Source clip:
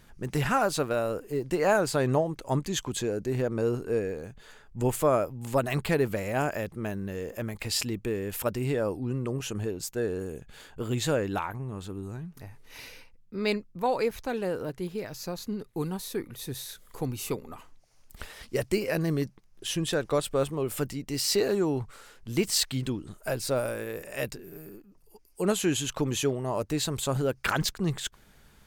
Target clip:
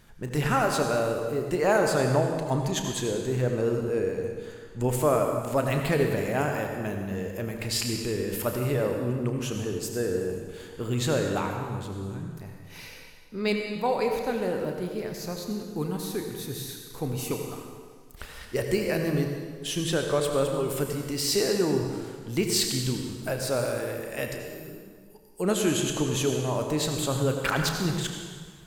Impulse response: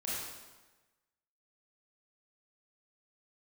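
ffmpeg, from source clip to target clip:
-filter_complex "[0:a]asplit=2[a][b];[1:a]atrim=start_sample=2205,asetrate=31311,aresample=44100,adelay=33[c];[b][c]afir=irnorm=-1:irlink=0,volume=-8.5dB[d];[a][d]amix=inputs=2:normalize=0"

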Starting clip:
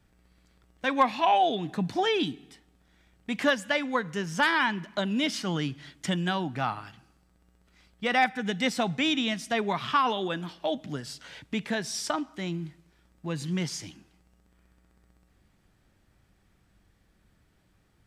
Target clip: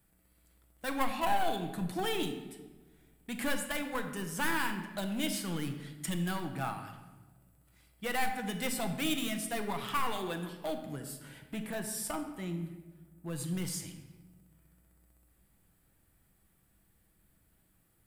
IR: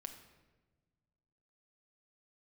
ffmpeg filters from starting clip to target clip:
-filter_complex "[0:a]asettb=1/sr,asplit=3[a][b][c];[a]atrim=end=10.724[d];[b]atrim=start=10.72:end=13.33,asetpts=PTS-STARTPTS,afade=t=in:d=0.004:c=qsin,afade=t=out:st=2.606:d=0.004:c=qsin,equalizer=f=4.6k:t=o:w=1.9:g=-6[e];[c]atrim=start=13.326[f];[d][e]acrossfade=d=0.004:c1=hsin:c2=qsin[g];[g][f]acrossfade=d=0.004:c1=qsin:c2=hsin,aeval=exprs='clip(val(0),-1,0.0473)':c=same,aexciter=amount=7:drive=5:freq=8.2k[h];[1:a]atrim=start_sample=2205,asetrate=42336,aresample=44100[i];[h][i]afir=irnorm=-1:irlink=0,volume=-2dB"

